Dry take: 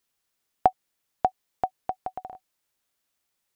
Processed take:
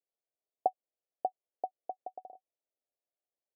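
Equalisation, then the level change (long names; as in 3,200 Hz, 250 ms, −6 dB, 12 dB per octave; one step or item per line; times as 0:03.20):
high-pass filter 380 Hz 12 dB per octave
Butterworth low-pass 700 Hz 48 dB per octave
spectral tilt +4.5 dB per octave
−1.5 dB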